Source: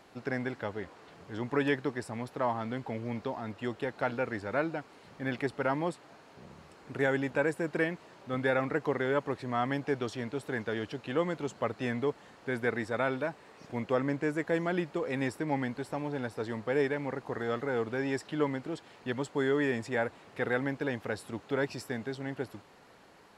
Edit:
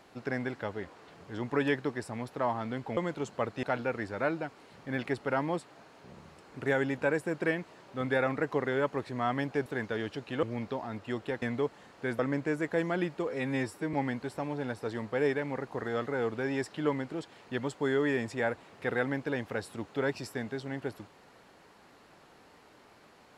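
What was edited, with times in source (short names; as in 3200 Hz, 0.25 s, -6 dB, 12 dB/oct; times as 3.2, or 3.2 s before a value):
2.97–3.96 swap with 11.2–11.86
9.99–10.43 cut
12.63–13.95 cut
15.05–15.48 stretch 1.5×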